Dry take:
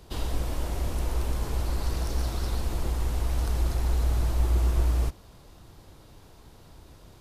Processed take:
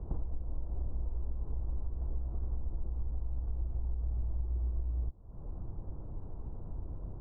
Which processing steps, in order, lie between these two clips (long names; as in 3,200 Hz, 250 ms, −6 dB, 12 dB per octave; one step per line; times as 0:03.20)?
low-pass filter 1,100 Hz 24 dB per octave
spectral tilt −3 dB per octave
downward compressor 8 to 1, threshold −30 dBFS, peak gain reduction 24.5 dB
level −1.5 dB